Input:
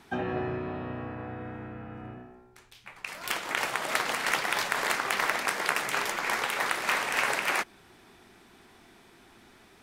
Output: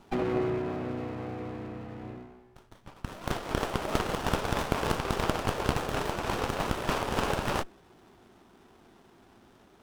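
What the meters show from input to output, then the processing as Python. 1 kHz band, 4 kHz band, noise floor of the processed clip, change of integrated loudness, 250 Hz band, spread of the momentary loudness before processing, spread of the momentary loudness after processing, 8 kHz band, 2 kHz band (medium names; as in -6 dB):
-1.5 dB, -4.5 dB, -59 dBFS, -2.5 dB, +6.0 dB, 14 LU, 12 LU, -6.5 dB, -9.0 dB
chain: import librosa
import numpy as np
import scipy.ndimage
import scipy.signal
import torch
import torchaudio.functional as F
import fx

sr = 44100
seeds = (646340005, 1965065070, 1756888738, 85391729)

y = fx.dynamic_eq(x, sr, hz=400.0, q=1.3, threshold_db=-47.0, ratio=4.0, max_db=5)
y = fx.running_max(y, sr, window=17)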